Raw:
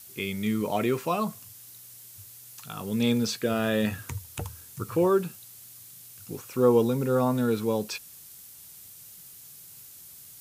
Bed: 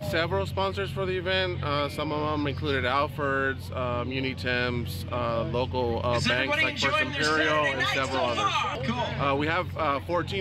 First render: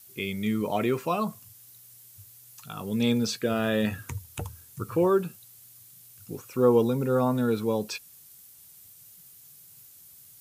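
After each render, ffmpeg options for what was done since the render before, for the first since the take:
ffmpeg -i in.wav -af "afftdn=noise_reduction=6:noise_floor=-48" out.wav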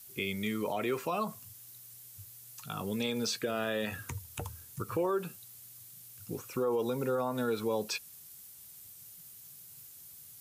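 ffmpeg -i in.wav -filter_complex "[0:a]acrossover=split=380|1100|1900[link_01][link_02][link_03][link_04];[link_01]acompressor=threshold=-36dB:ratio=6[link_05];[link_05][link_02][link_03][link_04]amix=inputs=4:normalize=0,alimiter=limit=-23dB:level=0:latency=1:release=84" out.wav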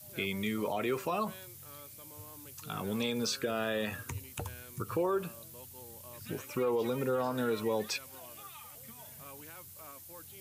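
ffmpeg -i in.wav -i bed.wav -filter_complex "[1:a]volume=-26dB[link_01];[0:a][link_01]amix=inputs=2:normalize=0" out.wav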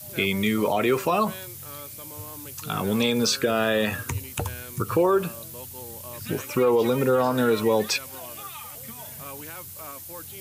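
ffmpeg -i in.wav -af "volume=10.5dB" out.wav

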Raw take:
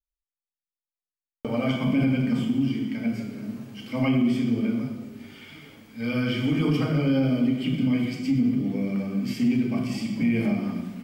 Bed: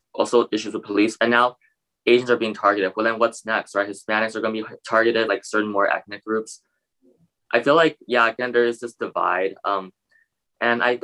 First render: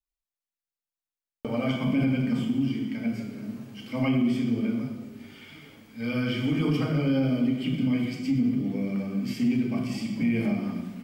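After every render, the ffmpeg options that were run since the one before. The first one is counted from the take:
ffmpeg -i in.wav -af "volume=-2dB" out.wav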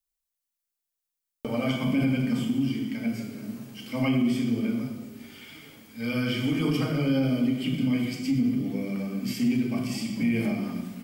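ffmpeg -i in.wav -af "highshelf=frequency=5600:gain=10.5,bandreject=frequency=50:width_type=h:width=6,bandreject=frequency=100:width_type=h:width=6,bandreject=frequency=150:width_type=h:width=6,bandreject=frequency=200:width_type=h:width=6" out.wav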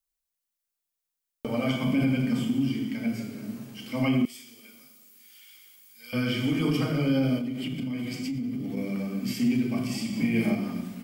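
ffmpeg -i in.wav -filter_complex "[0:a]asettb=1/sr,asplit=3[link_01][link_02][link_03];[link_01]atrim=end=4.254[link_04];[link_02]atrim=start=4.25:end=6.13,asetpts=PTS-STARTPTS,afade=type=in:duration=0.004:curve=qsin,afade=type=out:start_time=1.876:duration=0.004:curve=qsin,aderivative[link_05];[link_03]atrim=start=6.126[link_06];[link_04][link_05]acrossfade=duration=0.004:curve1=hsin:curve2=qsin[link_07];[link_07][link_06]acrossfade=duration=0.004:curve1=qsin:curve2=hsin,asettb=1/sr,asplit=3[link_08][link_09][link_10];[link_08]atrim=end=7.374[link_11];[link_09]atrim=start=7.37:end=8.77,asetpts=PTS-STARTPTS,afade=type=in:duration=0.004:curve=qsin,afade=type=out:start_time=1.396:duration=0.004:curve=qsin,acompressor=threshold=-28dB:ratio=6:attack=3.2:release=140:knee=1:detection=peak[link_12];[link_10]atrim=start=8.766[link_13];[link_11][link_12]acrossfade=duration=0.004:curve1=hsin:curve2=qsin[link_14];[link_14][link_13]acrossfade=duration=0.004:curve1=qsin:curve2=hsin,asettb=1/sr,asplit=3[link_15][link_16][link_17];[link_15]atrim=end=10.094[link_18];[link_16]atrim=start=10.09:end=10.55,asetpts=PTS-STARTPTS,afade=type=in:duration=0.004:curve=qsin,afade=type=out:start_time=0.456:duration=0.004:curve=qsin,asplit=2[link_19][link_20];[link_20]adelay=40,volume=-4dB[link_21];[link_19][link_21]amix=inputs=2:normalize=0,atrim=end_sample=20286[link_22];[link_17]atrim=start=10.546[link_23];[link_18][link_22]acrossfade=duration=0.004:curve1=hsin:curve2=qsin[link_24];[link_24][link_23]acrossfade=duration=0.004:curve1=qsin:curve2=hsin" out.wav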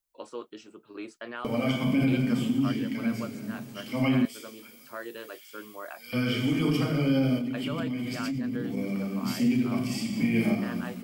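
ffmpeg -i in.wav -i bed.wav -filter_complex "[1:a]volume=-21.5dB[link_01];[0:a][link_01]amix=inputs=2:normalize=0" out.wav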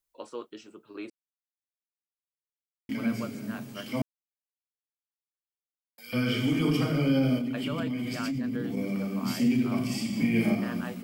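ffmpeg -i in.wav -filter_complex "[0:a]asplit=5[link_01][link_02][link_03][link_04][link_05];[link_01]atrim=end=1.1,asetpts=PTS-STARTPTS,afade=type=out:start_time=1.096:duration=0.004:curve=hsin[link_06];[link_02]atrim=start=1.1:end=2.89,asetpts=PTS-STARTPTS,volume=0[link_07];[link_03]atrim=start=2.89:end=4.02,asetpts=PTS-STARTPTS,afade=type=in:duration=0.004:curve=hsin,afade=type=out:start_time=1.126:duration=0.004:curve=hsin[link_08];[link_04]atrim=start=4.02:end=5.98,asetpts=PTS-STARTPTS,volume=0[link_09];[link_05]atrim=start=5.98,asetpts=PTS-STARTPTS,afade=type=in:duration=0.004:curve=hsin[link_10];[link_06][link_07][link_08][link_09][link_10]concat=n=5:v=0:a=1" out.wav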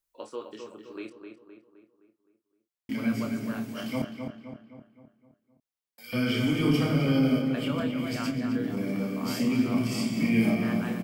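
ffmpeg -i in.wav -filter_complex "[0:a]asplit=2[link_01][link_02];[link_02]adelay=27,volume=-7dB[link_03];[link_01][link_03]amix=inputs=2:normalize=0,asplit=2[link_04][link_05];[link_05]adelay=259,lowpass=frequency=2800:poles=1,volume=-6dB,asplit=2[link_06][link_07];[link_07]adelay=259,lowpass=frequency=2800:poles=1,volume=0.51,asplit=2[link_08][link_09];[link_09]adelay=259,lowpass=frequency=2800:poles=1,volume=0.51,asplit=2[link_10][link_11];[link_11]adelay=259,lowpass=frequency=2800:poles=1,volume=0.51,asplit=2[link_12][link_13];[link_13]adelay=259,lowpass=frequency=2800:poles=1,volume=0.51,asplit=2[link_14][link_15];[link_15]adelay=259,lowpass=frequency=2800:poles=1,volume=0.51[link_16];[link_04][link_06][link_08][link_10][link_12][link_14][link_16]amix=inputs=7:normalize=0" out.wav

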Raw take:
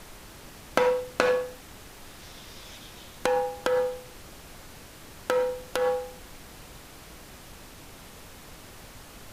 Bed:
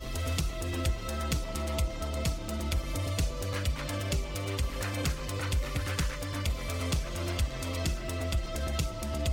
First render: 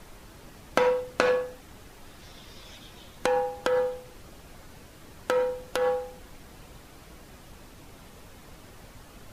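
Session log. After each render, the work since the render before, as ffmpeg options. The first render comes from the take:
ffmpeg -i in.wav -af "afftdn=noise_reduction=6:noise_floor=-48" out.wav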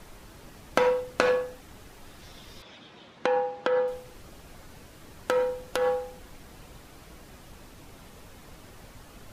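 ffmpeg -i in.wav -filter_complex "[0:a]asettb=1/sr,asplit=3[link_01][link_02][link_03];[link_01]atrim=end=2.624[link_04];[link_02]atrim=start=2.62:end=3.88,asetpts=PTS-STARTPTS,afade=type=in:duration=0.004:curve=qsin,afade=type=out:start_time=1.256:duration=0.004:curve=qsin,highpass=160,lowpass=3800[link_05];[link_03]atrim=start=3.876[link_06];[link_04][link_05]acrossfade=duration=0.004:curve1=hsin:curve2=qsin[link_07];[link_07][link_06]acrossfade=duration=0.004:curve1=qsin:curve2=hsin" out.wav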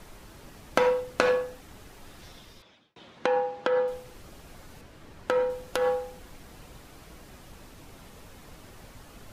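ffmpeg -i in.wav -filter_complex "[0:a]asettb=1/sr,asplit=3[link_01][link_02][link_03];[link_01]atrim=end=4.814[link_04];[link_02]atrim=start=4.81:end=5.5,asetpts=PTS-STARTPTS,afade=type=in:duration=0.004:curve=qsin,afade=type=out:start_time=0.686:duration=0.004:curve=qsin,highshelf=frequency=5900:gain=-10[link_05];[link_03]atrim=start=5.496[link_06];[link_04][link_05]acrossfade=duration=0.004:curve1=hsin:curve2=qsin[link_07];[link_07][link_06]acrossfade=duration=0.004:curve1=qsin:curve2=hsin,asplit=2[link_08][link_09];[link_08]atrim=end=2.96,asetpts=PTS-STARTPTS,afade=type=out:start_time=2.25:duration=0.71[link_10];[link_09]atrim=start=2.96,asetpts=PTS-STARTPTS,afade=type=in:duration=0.004:curve=hsin[link_11];[link_10][link_11]concat=n=2:v=0:a=1" out.wav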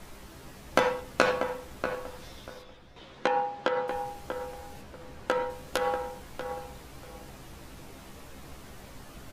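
ffmpeg -i in.wav -filter_complex "[0:a]asplit=2[link_01][link_02];[link_02]adelay=15,volume=-5dB[link_03];[link_01][link_03]amix=inputs=2:normalize=0,asplit=2[link_04][link_05];[link_05]adelay=639,lowpass=frequency=1700:poles=1,volume=-7dB,asplit=2[link_06][link_07];[link_07]adelay=639,lowpass=frequency=1700:poles=1,volume=0.22,asplit=2[link_08][link_09];[link_09]adelay=639,lowpass=frequency=1700:poles=1,volume=0.22[link_10];[link_04][link_06][link_08][link_10]amix=inputs=4:normalize=0" out.wav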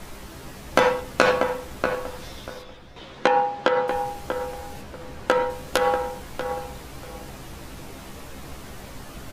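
ffmpeg -i in.wav -af "volume=7.5dB,alimiter=limit=-3dB:level=0:latency=1" out.wav

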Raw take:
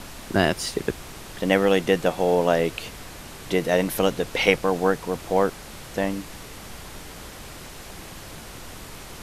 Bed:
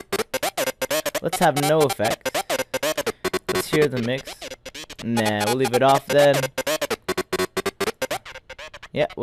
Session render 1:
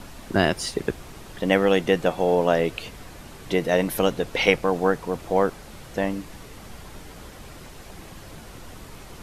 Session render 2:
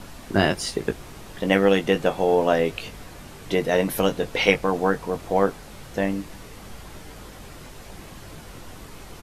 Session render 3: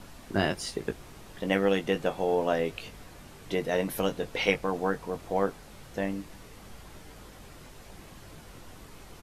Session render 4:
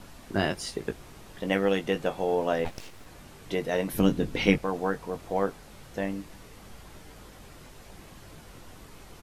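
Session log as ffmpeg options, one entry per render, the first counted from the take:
ffmpeg -i in.wav -af "afftdn=noise_reduction=6:noise_floor=-41" out.wav
ffmpeg -i in.wav -filter_complex "[0:a]asplit=2[link_01][link_02];[link_02]adelay=20,volume=-8.5dB[link_03];[link_01][link_03]amix=inputs=2:normalize=0" out.wav
ffmpeg -i in.wav -af "volume=-7dB" out.wav
ffmpeg -i in.wav -filter_complex "[0:a]asplit=3[link_01][link_02][link_03];[link_01]afade=type=out:start_time=2.64:duration=0.02[link_04];[link_02]aeval=exprs='abs(val(0))':channel_layout=same,afade=type=in:start_time=2.64:duration=0.02,afade=type=out:start_time=3.05:duration=0.02[link_05];[link_03]afade=type=in:start_time=3.05:duration=0.02[link_06];[link_04][link_05][link_06]amix=inputs=3:normalize=0,asettb=1/sr,asplit=3[link_07][link_08][link_09];[link_07]atrim=end=3.934[link_10];[link_08]atrim=start=3.93:end=4.58,asetpts=PTS-STARTPTS,afade=type=in:duration=0.004:curve=qsin,afade=type=out:start_time=0.646:duration=0.004:curve=qsin,lowshelf=frequency=400:width_type=q:width=1.5:gain=9[link_11];[link_09]atrim=start=4.576[link_12];[link_10][link_11]acrossfade=duration=0.004:curve1=hsin:curve2=qsin[link_13];[link_13][link_12]acrossfade=duration=0.004:curve1=qsin:curve2=hsin" out.wav

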